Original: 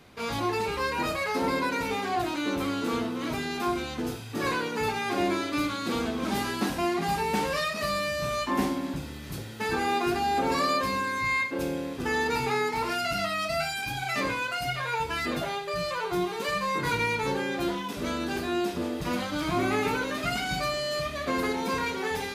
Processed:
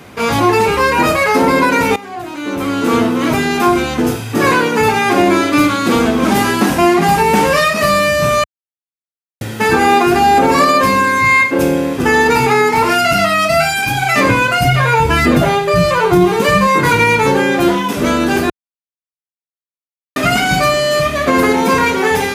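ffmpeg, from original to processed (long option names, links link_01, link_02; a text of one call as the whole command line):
ffmpeg -i in.wav -filter_complex "[0:a]asettb=1/sr,asplit=3[link_01][link_02][link_03];[link_01]atrim=end=14.294[link_04];[link_02]atrim=start=14.29:end=16.67,asetpts=PTS-STARTPTS,afade=type=in:duration=0.004:curve=qsin,afade=type=out:start_time=2.376:duration=0.004:curve=qsin,lowshelf=frequency=250:gain=11.5[link_05];[link_03]atrim=start=16.666[link_06];[link_04][link_05]acrossfade=duration=0.004:curve1=hsin:curve2=qsin[link_07];[link_07][link_06]acrossfade=duration=0.004:curve1=qsin:curve2=hsin,asplit=6[link_08][link_09][link_10][link_11][link_12][link_13];[link_08]atrim=end=1.96,asetpts=PTS-STARTPTS,afade=type=out:start_time=1.956:duration=0.004:curve=hsin:silence=0.141254[link_14];[link_09]atrim=start=1.96:end=8.44,asetpts=PTS-STARTPTS,afade=type=in:duration=1.04:curve=qua:silence=0.141254,afade=type=out:start_time=6.476:duration=0.004:curve=hsin[link_15];[link_10]atrim=start=8.44:end=9.41,asetpts=PTS-STARTPTS,volume=0[link_16];[link_11]atrim=start=9.41:end=18.5,asetpts=PTS-STARTPTS,afade=type=in:duration=0.004:curve=hsin,afade=type=out:start_time=9.086:duration=0.004:curve=hsin[link_17];[link_12]atrim=start=18.5:end=20.16,asetpts=PTS-STARTPTS,volume=0[link_18];[link_13]atrim=start=20.16,asetpts=PTS-STARTPTS,afade=type=in:duration=0.004:curve=hsin[link_19];[link_14][link_15][link_16][link_17][link_18][link_19]concat=n=6:v=0:a=1,highpass=65,equalizer=frequency=4100:width=2:gain=-6,alimiter=level_in=18dB:limit=-1dB:release=50:level=0:latency=1,volume=-1dB" out.wav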